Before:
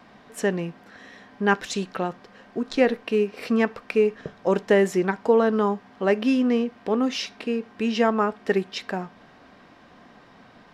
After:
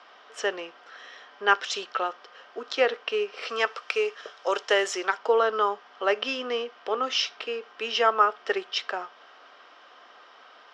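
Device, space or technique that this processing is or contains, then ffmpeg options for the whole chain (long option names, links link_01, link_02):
phone speaker on a table: -filter_complex "[0:a]asettb=1/sr,asplit=3[link_01][link_02][link_03];[link_01]atrim=end=3.494[link_04];[link_02]atrim=start=3.49:end=5.18,asetpts=PTS-STARTPTS,afade=type=in:duration=0.004:curve=qsin,afade=type=out:start_time=1.686:duration=0.004:curve=qsin,aemphasis=mode=production:type=bsi[link_05];[link_03]atrim=start=5.176[link_06];[link_04][link_05]acrossfade=duration=0.004:curve1=hsin:curve2=qsin[link_07];[link_07][link_06]acrossfade=duration=0.004:curve1=qsin:curve2=hsin,highpass=frequency=420:width=0.5412,highpass=frequency=420:width=1.3066,equalizer=frequency=1300:width_type=q:width=4:gain=10,equalizer=frequency=3100:width_type=q:width=4:gain=10,equalizer=frequency=5400:width_type=q:width=4:gain=6,lowpass=frequency=6900:width=0.5412,lowpass=frequency=6900:width=1.3066,volume=-2dB"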